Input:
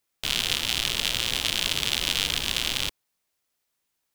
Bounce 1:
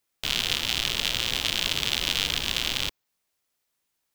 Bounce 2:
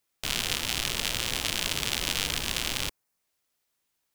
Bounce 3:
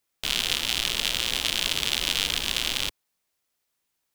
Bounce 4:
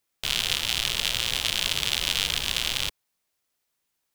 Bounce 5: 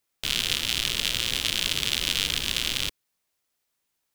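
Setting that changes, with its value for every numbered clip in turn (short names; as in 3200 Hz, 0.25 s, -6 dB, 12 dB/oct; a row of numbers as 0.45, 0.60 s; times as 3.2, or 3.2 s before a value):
dynamic EQ, frequency: 9900, 3400, 110, 280, 810 Hz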